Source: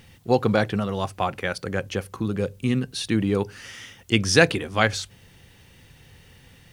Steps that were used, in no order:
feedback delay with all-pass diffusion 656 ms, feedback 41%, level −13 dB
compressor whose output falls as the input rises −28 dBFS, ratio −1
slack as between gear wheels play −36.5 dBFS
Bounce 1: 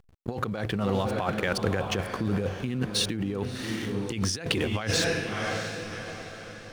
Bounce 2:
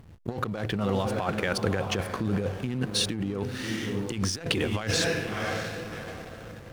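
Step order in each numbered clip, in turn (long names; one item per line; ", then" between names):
slack as between gear wheels, then feedback delay with all-pass diffusion, then compressor whose output falls as the input rises
feedback delay with all-pass diffusion, then compressor whose output falls as the input rises, then slack as between gear wheels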